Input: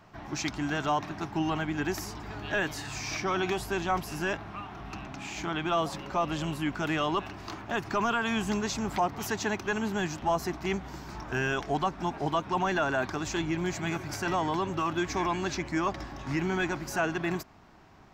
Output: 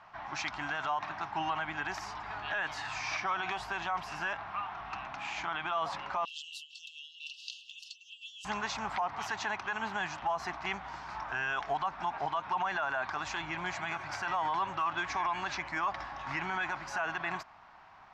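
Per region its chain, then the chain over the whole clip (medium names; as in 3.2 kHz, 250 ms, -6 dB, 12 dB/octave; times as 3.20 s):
6.25–8.45 s: treble shelf 3.5 kHz +6 dB + compressor with a negative ratio -36 dBFS + brick-wall FIR high-pass 2.6 kHz
whole clip: Bessel low-pass 3.1 kHz, order 2; resonant low shelf 570 Hz -14 dB, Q 1.5; peak limiter -26.5 dBFS; trim +2.5 dB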